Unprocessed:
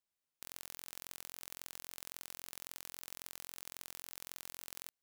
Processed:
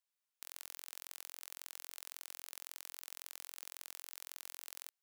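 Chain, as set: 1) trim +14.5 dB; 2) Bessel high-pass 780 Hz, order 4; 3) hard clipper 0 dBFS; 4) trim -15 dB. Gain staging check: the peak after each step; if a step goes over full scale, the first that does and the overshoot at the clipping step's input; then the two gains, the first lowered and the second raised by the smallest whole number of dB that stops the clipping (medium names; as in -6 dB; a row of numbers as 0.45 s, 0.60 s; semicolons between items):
-3.0 dBFS, -4.0 dBFS, -4.0 dBFS, -19.0 dBFS; nothing clips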